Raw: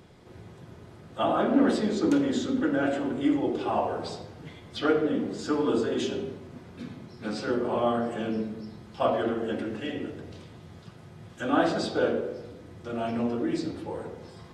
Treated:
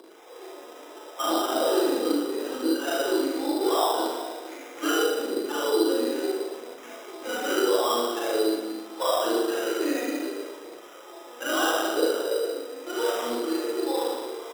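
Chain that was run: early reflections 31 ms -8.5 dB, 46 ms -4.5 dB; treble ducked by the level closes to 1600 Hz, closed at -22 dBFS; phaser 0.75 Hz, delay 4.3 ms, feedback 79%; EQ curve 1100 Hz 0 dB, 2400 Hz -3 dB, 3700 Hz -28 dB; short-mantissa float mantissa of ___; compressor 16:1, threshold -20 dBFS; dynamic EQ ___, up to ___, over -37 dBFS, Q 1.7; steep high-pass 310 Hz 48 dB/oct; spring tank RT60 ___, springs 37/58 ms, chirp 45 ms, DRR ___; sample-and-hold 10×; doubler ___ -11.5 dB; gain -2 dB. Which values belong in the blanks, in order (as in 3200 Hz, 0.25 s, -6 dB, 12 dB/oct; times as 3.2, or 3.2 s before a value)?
4-bit, 640 Hz, -4 dB, 1.1 s, -5.5 dB, 48 ms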